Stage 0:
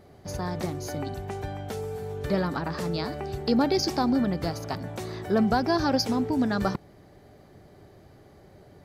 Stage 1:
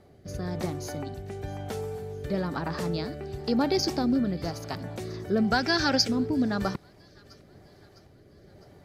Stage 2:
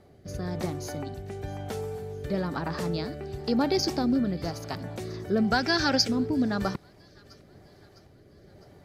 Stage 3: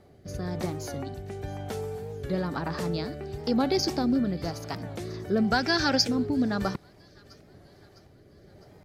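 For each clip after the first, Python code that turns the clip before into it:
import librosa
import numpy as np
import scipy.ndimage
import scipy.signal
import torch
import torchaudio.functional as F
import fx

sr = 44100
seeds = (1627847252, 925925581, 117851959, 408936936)

y1 = fx.rotary(x, sr, hz=1.0)
y1 = fx.echo_wet_highpass(y1, sr, ms=656, feedback_pct=54, hz=1900.0, wet_db=-19.0)
y1 = fx.spec_box(y1, sr, start_s=5.52, length_s=0.56, low_hz=1300.0, high_hz=8900.0, gain_db=8)
y2 = y1
y3 = fx.record_warp(y2, sr, rpm=45.0, depth_cents=100.0)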